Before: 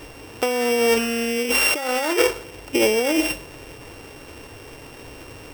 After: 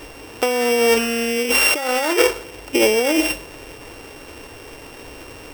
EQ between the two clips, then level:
parametric band 120 Hz −6 dB 1.3 octaves
+3.0 dB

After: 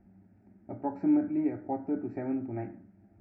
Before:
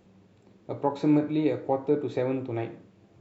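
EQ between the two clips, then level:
moving average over 13 samples
low shelf with overshoot 260 Hz +7.5 dB, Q 1.5
phaser with its sweep stopped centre 720 Hz, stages 8
−2.5 dB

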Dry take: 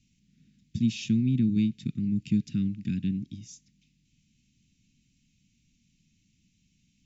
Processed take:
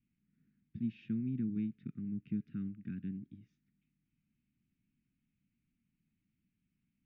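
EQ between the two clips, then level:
linear-phase brick-wall band-stop 500–1,100 Hz
transistor ladder low-pass 1,700 Hz, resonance 40%
low-shelf EQ 220 Hz −10 dB
+2.0 dB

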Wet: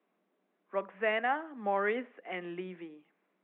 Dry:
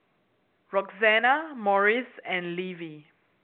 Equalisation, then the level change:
Butterworth high-pass 180 Hz 72 dB per octave
high-shelf EQ 2,100 Hz −10.5 dB
−6.5 dB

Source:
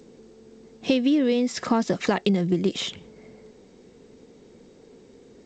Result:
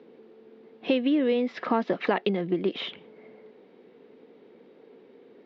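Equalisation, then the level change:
high-pass filter 290 Hz 12 dB per octave
low-pass filter 3,500 Hz 24 dB per octave
high-frequency loss of the air 93 metres
0.0 dB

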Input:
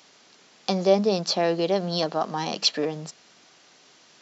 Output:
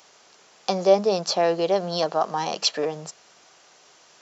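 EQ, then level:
graphic EQ with 10 bands 125 Hz −6 dB, 250 Hz −11 dB, 2,000 Hz −4 dB, 4,000 Hz −6 dB
+5.0 dB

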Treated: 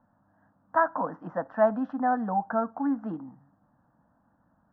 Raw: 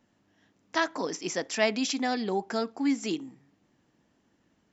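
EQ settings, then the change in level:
Chebyshev low-pass filter 1,600 Hz, order 4
low-shelf EQ 130 Hz −3.5 dB
phaser with its sweep stopped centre 940 Hz, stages 4
+8.0 dB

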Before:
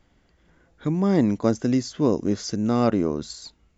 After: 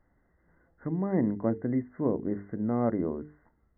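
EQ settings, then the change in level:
mains-hum notches 50/100/150/200/250/300/350/400/450 Hz
dynamic equaliser 1,300 Hz, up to −6 dB, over −47 dBFS, Q 2.5
linear-phase brick-wall low-pass 2,100 Hz
−6.0 dB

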